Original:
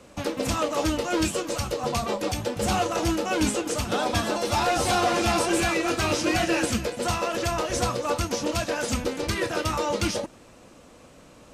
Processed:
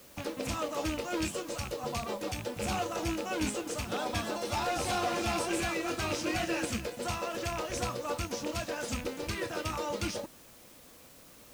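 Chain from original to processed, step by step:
loose part that buzzes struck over −29 dBFS, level −20 dBFS
bit-depth reduction 8 bits, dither triangular
level −8.5 dB

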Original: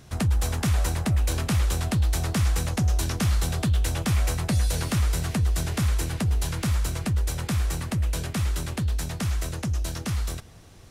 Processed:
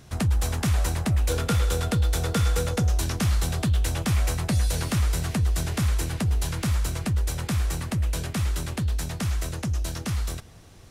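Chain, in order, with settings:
0:01.29–0:02.89: hollow resonant body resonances 480/1,400/3,500 Hz, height 14 dB, ringing for 85 ms

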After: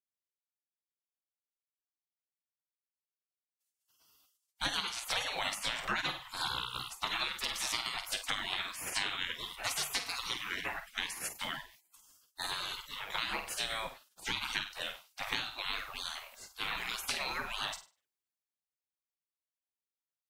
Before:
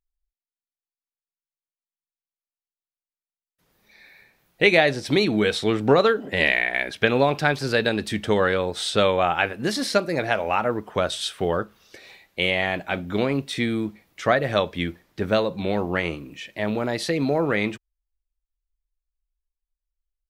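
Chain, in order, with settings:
on a send: flutter between parallel walls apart 8.5 metres, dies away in 0.34 s
on the sum: gate on every frequency bin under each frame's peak −25 dB weak
downward compressor 6 to 1, threshold −41 dBFS, peak gain reduction 12 dB
multiband upward and downward expander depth 40%
level +9 dB

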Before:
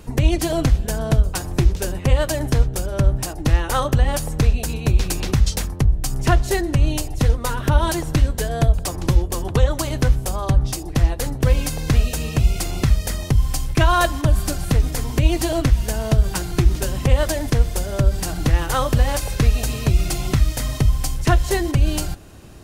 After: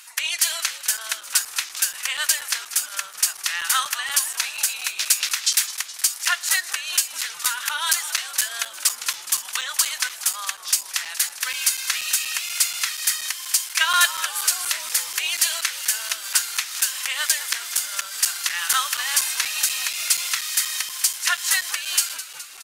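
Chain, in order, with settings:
high-pass filter 1,400 Hz 24 dB per octave
parametric band 9,800 Hz +5 dB 2.3 octaves
echo with shifted repeats 209 ms, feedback 64%, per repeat −110 Hz, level −14 dB
regular buffer underruns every 0.24 s, samples 256, zero, from 0:00.97
level +5 dB

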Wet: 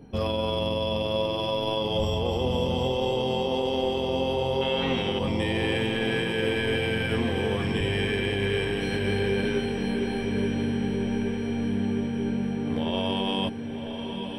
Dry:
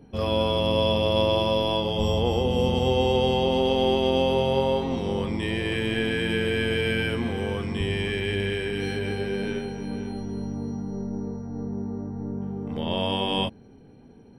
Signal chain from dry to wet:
0:04.61–0:05.19: flat-topped bell 2,100 Hz +12.5 dB
brickwall limiter −20.5 dBFS, peak gain reduction 10.5 dB
feedback delay with all-pass diffusion 1,047 ms, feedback 67%, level −8 dB
level +2.5 dB

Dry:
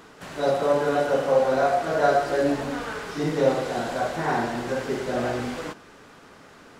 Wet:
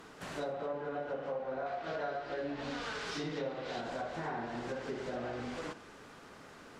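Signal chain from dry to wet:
0:01.66–0:03.81: parametric band 4,200 Hz +9.5 dB 2 octaves
treble cut that deepens with the level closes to 2,600 Hz, closed at −18.5 dBFS
downward compressor 5 to 1, threshold −32 dBFS, peak gain reduction 16 dB
convolution reverb, pre-delay 43 ms, DRR 16.5 dB
level −4.5 dB

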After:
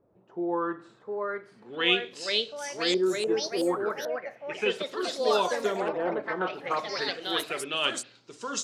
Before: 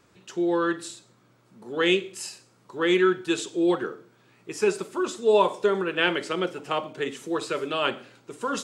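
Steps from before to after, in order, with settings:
auto-filter low-pass saw up 0.34 Hz 580–7,900 Hz
high-shelf EQ 4,200 Hz +9.5 dB
delay with pitch and tempo change per echo 767 ms, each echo +3 semitones, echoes 3
level −7.5 dB

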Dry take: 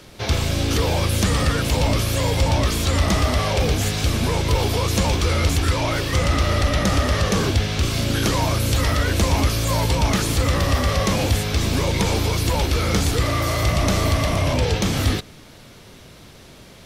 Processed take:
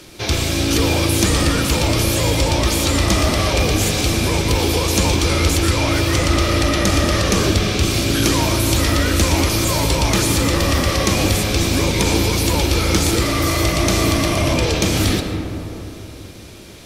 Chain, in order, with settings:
parametric band 10,000 Hz +7 dB 2.8 octaves
hollow resonant body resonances 330/2,400 Hz, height 9 dB
on a send: convolution reverb RT60 3.3 s, pre-delay 65 ms, DRR 5.5 dB

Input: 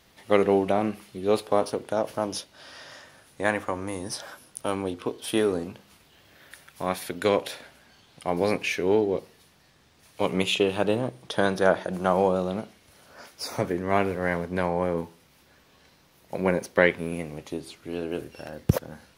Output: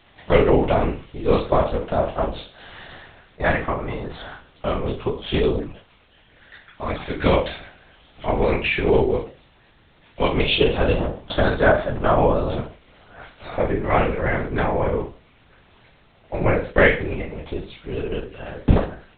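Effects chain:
peak hold with a decay on every bin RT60 0.40 s
0:05.37–0:07.00: flanger swept by the level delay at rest 4.6 ms, full sweep at −20 dBFS
linear-prediction vocoder at 8 kHz whisper
level +4.5 dB

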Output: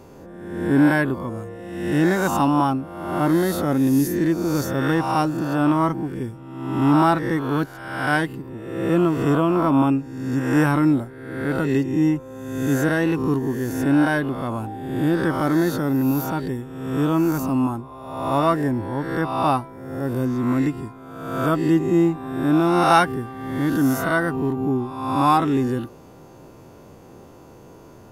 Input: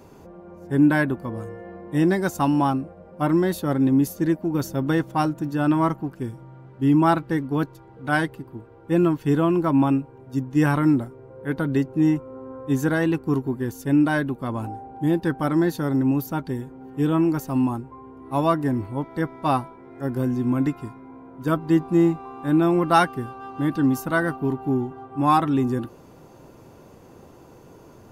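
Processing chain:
peak hold with a rise ahead of every peak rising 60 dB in 1.08 s

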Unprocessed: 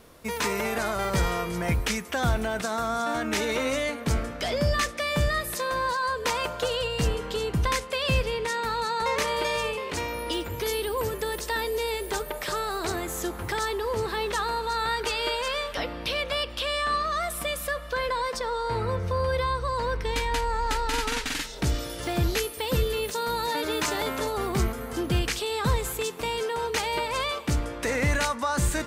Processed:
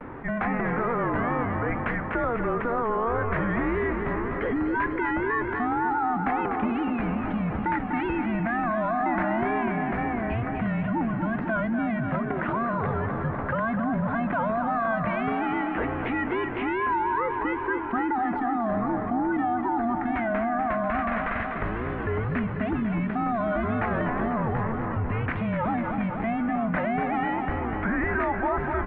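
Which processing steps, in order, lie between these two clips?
tape wow and flutter 140 cents
on a send: repeating echo 247 ms, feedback 59%, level −8.5 dB
on the sum: single-sideband voice off tune −230 Hz 260–2,200 Hz
envelope flattener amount 50%

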